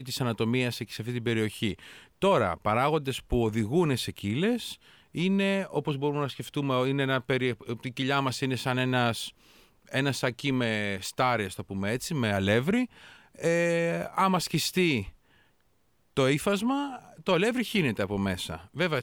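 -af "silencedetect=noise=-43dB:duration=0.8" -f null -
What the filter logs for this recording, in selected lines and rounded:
silence_start: 15.10
silence_end: 16.17 | silence_duration: 1.07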